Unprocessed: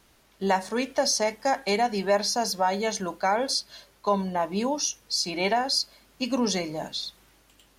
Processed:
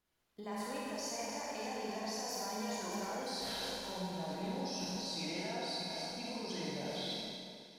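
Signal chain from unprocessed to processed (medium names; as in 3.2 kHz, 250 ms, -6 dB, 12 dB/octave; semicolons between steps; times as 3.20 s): Doppler pass-by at 3.10 s, 25 m/s, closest 6.4 m; peaking EQ 6.9 kHz -2.5 dB; reverse; compression 10:1, threshold -46 dBFS, peak gain reduction 26 dB; reverse; peak limiter -41.5 dBFS, peak gain reduction 6 dB; on a send: echo whose repeats swap between lows and highs 154 ms, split 2.1 kHz, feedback 89%, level -10.5 dB; on the sum: level held to a coarse grid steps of 20 dB; Schroeder reverb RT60 1.9 s, combs from 33 ms, DRR -4.5 dB; trim +14.5 dB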